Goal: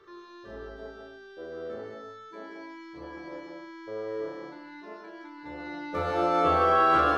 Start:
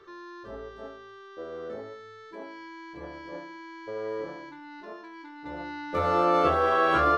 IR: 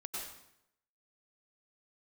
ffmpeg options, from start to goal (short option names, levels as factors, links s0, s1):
-filter_complex "[0:a]asplit=2[s0][s1];[1:a]atrim=start_sample=2205,afade=t=out:st=0.32:d=0.01,atrim=end_sample=14553,adelay=37[s2];[s1][s2]afir=irnorm=-1:irlink=0,volume=1[s3];[s0][s3]amix=inputs=2:normalize=0,volume=0.668"